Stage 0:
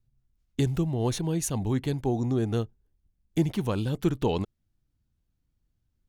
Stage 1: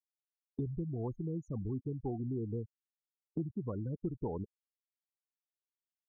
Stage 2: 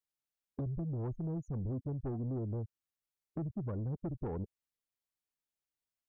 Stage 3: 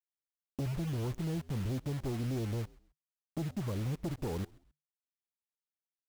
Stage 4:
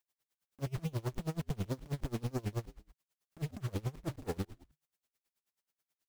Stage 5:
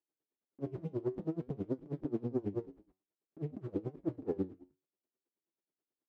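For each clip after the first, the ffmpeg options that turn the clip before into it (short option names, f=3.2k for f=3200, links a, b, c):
-af "afftfilt=real='re*gte(hypot(re,im),0.0794)':imag='im*gte(hypot(re,im),0.0794)':win_size=1024:overlap=0.75,lowpass=1.6k,acompressor=threshold=-36dB:ratio=2.5,volume=-2dB"
-af "lowshelf=f=150:g=8.5,asoftclip=type=tanh:threshold=-32dB"
-filter_complex "[0:a]acrusher=bits=7:mix=0:aa=0.000001,asplit=3[a][b][c];[b]adelay=132,afreqshift=-75,volume=-23dB[d];[c]adelay=264,afreqshift=-150,volume=-33.2dB[e];[a][d][e]amix=inputs=3:normalize=0,volume=2dB"
-af "asoftclip=type=tanh:threshold=-39.5dB,acompressor=threshold=-45dB:ratio=6,aeval=exprs='val(0)*pow(10,-27*(0.5-0.5*cos(2*PI*9.3*n/s))/20)':c=same,volume=14.5dB"
-af "bandpass=f=330:t=q:w=2.5:csg=0,flanger=delay=6:depth=5.1:regen=78:speed=0.54:shape=sinusoidal,volume=13dB"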